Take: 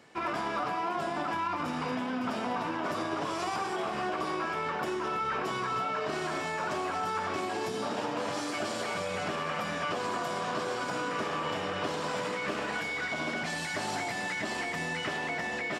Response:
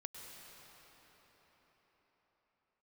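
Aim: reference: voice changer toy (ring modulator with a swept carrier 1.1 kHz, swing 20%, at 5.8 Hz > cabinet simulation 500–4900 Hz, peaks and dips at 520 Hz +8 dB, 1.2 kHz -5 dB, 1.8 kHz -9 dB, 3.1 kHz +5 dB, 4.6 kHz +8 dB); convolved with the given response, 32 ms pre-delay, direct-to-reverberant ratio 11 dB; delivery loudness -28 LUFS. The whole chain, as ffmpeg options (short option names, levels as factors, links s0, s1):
-filter_complex "[0:a]asplit=2[s0][s1];[1:a]atrim=start_sample=2205,adelay=32[s2];[s1][s2]afir=irnorm=-1:irlink=0,volume=0.398[s3];[s0][s3]amix=inputs=2:normalize=0,aeval=exprs='val(0)*sin(2*PI*1100*n/s+1100*0.2/5.8*sin(2*PI*5.8*n/s))':c=same,highpass=500,equalizer=f=520:t=q:w=4:g=8,equalizer=f=1200:t=q:w=4:g=-5,equalizer=f=1800:t=q:w=4:g=-9,equalizer=f=3100:t=q:w=4:g=5,equalizer=f=4600:t=q:w=4:g=8,lowpass=f=4900:w=0.5412,lowpass=f=4900:w=1.3066,volume=2.37"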